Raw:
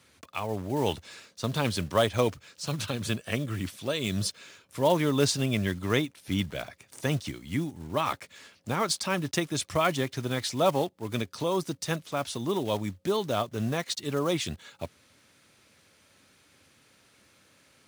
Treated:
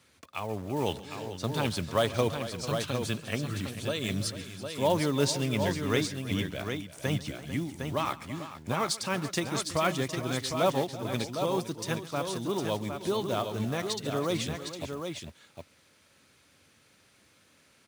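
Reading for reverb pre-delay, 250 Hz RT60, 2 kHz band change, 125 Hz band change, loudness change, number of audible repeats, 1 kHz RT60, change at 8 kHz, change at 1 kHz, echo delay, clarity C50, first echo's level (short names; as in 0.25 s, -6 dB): none, none, -1.5 dB, -1.5 dB, -1.5 dB, 4, none, -1.5 dB, -1.5 dB, 0.138 s, none, -19.0 dB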